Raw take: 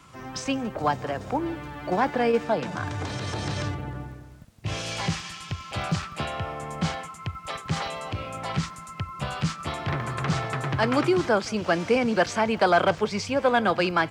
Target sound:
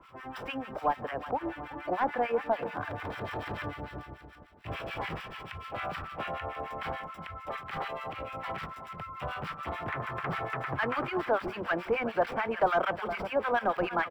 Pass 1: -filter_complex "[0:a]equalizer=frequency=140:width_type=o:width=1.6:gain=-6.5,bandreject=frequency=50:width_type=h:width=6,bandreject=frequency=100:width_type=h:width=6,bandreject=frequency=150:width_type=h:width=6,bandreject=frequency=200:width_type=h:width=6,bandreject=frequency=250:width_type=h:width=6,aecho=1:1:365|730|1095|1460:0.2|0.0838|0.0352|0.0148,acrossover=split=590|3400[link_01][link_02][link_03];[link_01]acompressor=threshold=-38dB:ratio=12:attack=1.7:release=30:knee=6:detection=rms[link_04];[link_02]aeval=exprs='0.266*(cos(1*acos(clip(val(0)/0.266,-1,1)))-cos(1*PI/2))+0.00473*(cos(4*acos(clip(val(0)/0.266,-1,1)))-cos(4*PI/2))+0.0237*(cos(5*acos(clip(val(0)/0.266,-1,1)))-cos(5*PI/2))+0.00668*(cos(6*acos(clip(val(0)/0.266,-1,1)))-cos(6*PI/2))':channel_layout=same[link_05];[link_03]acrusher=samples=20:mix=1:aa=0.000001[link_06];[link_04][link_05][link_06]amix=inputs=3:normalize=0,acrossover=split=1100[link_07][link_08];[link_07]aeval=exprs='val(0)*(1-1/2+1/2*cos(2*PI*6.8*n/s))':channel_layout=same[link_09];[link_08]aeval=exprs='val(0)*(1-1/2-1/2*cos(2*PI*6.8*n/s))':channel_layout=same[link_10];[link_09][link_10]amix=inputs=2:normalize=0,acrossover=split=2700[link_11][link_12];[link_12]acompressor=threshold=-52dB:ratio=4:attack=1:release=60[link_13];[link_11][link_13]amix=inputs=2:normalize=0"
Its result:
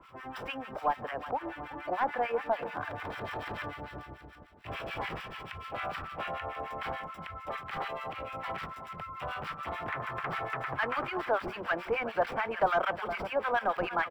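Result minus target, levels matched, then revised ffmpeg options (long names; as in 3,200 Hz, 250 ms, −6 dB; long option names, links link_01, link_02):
downward compressor: peak gain reduction +8 dB
-filter_complex "[0:a]equalizer=frequency=140:width_type=o:width=1.6:gain=-6.5,bandreject=frequency=50:width_type=h:width=6,bandreject=frequency=100:width_type=h:width=6,bandreject=frequency=150:width_type=h:width=6,bandreject=frequency=200:width_type=h:width=6,bandreject=frequency=250:width_type=h:width=6,aecho=1:1:365|730|1095|1460:0.2|0.0838|0.0352|0.0148,acrossover=split=590|3400[link_01][link_02][link_03];[link_01]acompressor=threshold=-29dB:ratio=12:attack=1.7:release=30:knee=6:detection=rms[link_04];[link_02]aeval=exprs='0.266*(cos(1*acos(clip(val(0)/0.266,-1,1)))-cos(1*PI/2))+0.00473*(cos(4*acos(clip(val(0)/0.266,-1,1)))-cos(4*PI/2))+0.0237*(cos(5*acos(clip(val(0)/0.266,-1,1)))-cos(5*PI/2))+0.00668*(cos(6*acos(clip(val(0)/0.266,-1,1)))-cos(6*PI/2))':channel_layout=same[link_05];[link_03]acrusher=samples=20:mix=1:aa=0.000001[link_06];[link_04][link_05][link_06]amix=inputs=3:normalize=0,acrossover=split=1100[link_07][link_08];[link_07]aeval=exprs='val(0)*(1-1/2+1/2*cos(2*PI*6.8*n/s))':channel_layout=same[link_09];[link_08]aeval=exprs='val(0)*(1-1/2-1/2*cos(2*PI*6.8*n/s))':channel_layout=same[link_10];[link_09][link_10]amix=inputs=2:normalize=0,acrossover=split=2700[link_11][link_12];[link_12]acompressor=threshold=-52dB:ratio=4:attack=1:release=60[link_13];[link_11][link_13]amix=inputs=2:normalize=0"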